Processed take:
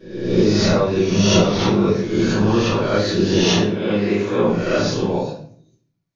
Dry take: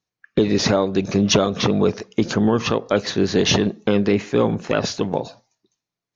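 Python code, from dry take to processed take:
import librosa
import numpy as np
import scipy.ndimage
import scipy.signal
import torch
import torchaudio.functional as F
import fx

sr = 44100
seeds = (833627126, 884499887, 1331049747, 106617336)

y = fx.spec_swells(x, sr, rise_s=0.85)
y = fx.highpass(y, sr, hz=180.0, slope=6, at=(3.41, 4.42))
y = fx.room_shoebox(y, sr, seeds[0], volume_m3=65.0, walls='mixed', distance_m=2.8)
y = y * librosa.db_to_amplitude(-14.5)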